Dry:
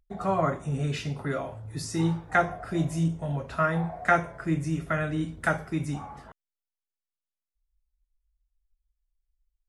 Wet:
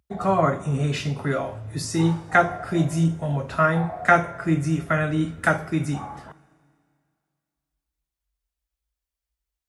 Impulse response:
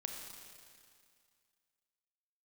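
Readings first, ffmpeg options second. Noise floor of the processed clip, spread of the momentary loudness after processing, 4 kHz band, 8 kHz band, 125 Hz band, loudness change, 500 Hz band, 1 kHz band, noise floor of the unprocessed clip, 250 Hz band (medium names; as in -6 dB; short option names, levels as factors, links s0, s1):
under -85 dBFS, 9 LU, +5.5 dB, +5.5 dB, +5.0 dB, +5.5 dB, +5.5 dB, +5.5 dB, under -85 dBFS, +5.5 dB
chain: -filter_complex "[0:a]highpass=f=63:w=0.5412,highpass=f=63:w=1.3066,asplit=2[s0][s1];[1:a]atrim=start_sample=2205,adelay=51[s2];[s1][s2]afir=irnorm=-1:irlink=0,volume=0.141[s3];[s0][s3]amix=inputs=2:normalize=0,volume=1.88"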